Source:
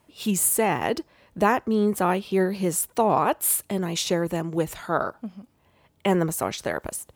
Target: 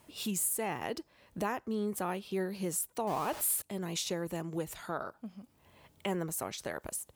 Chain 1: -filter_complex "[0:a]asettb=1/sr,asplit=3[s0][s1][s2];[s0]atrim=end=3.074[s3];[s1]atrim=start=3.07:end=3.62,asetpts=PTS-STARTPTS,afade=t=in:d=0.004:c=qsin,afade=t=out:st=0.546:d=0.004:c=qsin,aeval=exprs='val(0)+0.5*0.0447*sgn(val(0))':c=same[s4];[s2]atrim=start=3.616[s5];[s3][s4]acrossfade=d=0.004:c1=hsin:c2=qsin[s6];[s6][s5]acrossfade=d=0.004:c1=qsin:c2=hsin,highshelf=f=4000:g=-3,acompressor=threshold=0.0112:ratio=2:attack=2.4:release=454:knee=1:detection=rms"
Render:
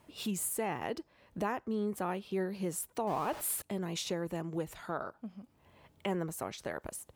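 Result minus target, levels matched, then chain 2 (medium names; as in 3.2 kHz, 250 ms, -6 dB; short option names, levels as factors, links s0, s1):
8 kHz band -3.0 dB
-filter_complex "[0:a]asettb=1/sr,asplit=3[s0][s1][s2];[s0]atrim=end=3.074[s3];[s1]atrim=start=3.07:end=3.62,asetpts=PTS-STARTPTS,afade=t=in:d=0.004:c=qsin,afade=t=out:st=0.546:d=0.004:c=qsin,aeval=exprs='val(0)+0.5*0.0447*sgn(val(0))':c=same[s4];[s2]atrim=start=3.616[s5];[s3][s4]acrossfade=d=0.004:c1=hsin:c2=qsin[s6];[s6][s5]acrossfade=d=0.004:c1=qsin:c2=hsin,highshelf=f=4000:g=5.5,acompressor=threshold=0.0112:ratio=2:attack=2.4:release=454:knee=1:detection=rms"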